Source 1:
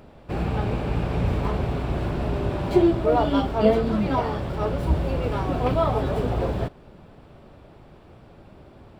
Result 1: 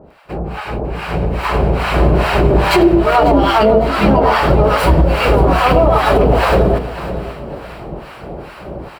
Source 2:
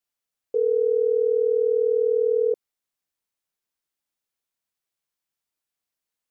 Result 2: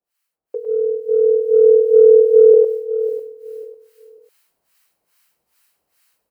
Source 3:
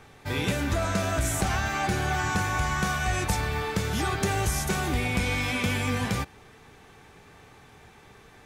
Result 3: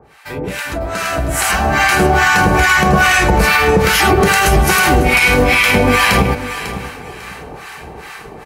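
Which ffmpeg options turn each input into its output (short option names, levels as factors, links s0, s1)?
-filter_complex "[0:a]equalizer=f=100:t=o:w=0.67:g=-12,equalizer=f=250:t=o:w=0.67:g=-6,equalizer=f=6300:t=o:w=0.67:g=-5,asplit=2[s0][s1];[s1]aecho=0:1:105:0.668[s2];[s0][s2]amix=inputs=2:normalize=0,acrossover=split=890[s3][s4];[s3]aeval=exprs='val(0)*(1-1/2+1/2*cos(2*PI*2.4*n/s))':c=same[s5];[s4]aeval=exprs='val(0)*(1-1/2-1/2*cos(2*PI*2.4*n/s))':c=same[s6];[s5][s6]amix=inputs=2:normalize=0,acompressor=threshold=0.0316:ratio=6,asplit=2[s7][s8];[s8]aecho=0:1:548|1096|1644:0.211|0.0528|0.0132[s9];[s7][s9]amix=inputs=2:normalize=0,dynaudnorm=f=250:g=13:m=4.73,adynamicequalizer=threshold=0.00355:dfrequency=8100:dqfactor=2.6:tfrequency=8100:tqfactor=2.6:attack=5:release=100:ratio=0.375:range=2:mode=cutabove:tftype=bell,highpass=47,bandreject=f=3500:w=8.2,alimiter=level_in=4.22:limit=0.891:release=50:level=0:latency=1,volume=0.891"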